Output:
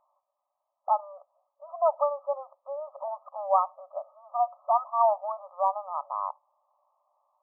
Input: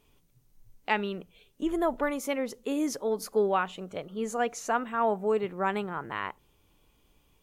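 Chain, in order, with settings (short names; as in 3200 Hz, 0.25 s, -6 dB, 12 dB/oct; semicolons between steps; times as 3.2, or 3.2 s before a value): brick-wall FIR band-pass 550–1300 Hz; gain +5.5 dB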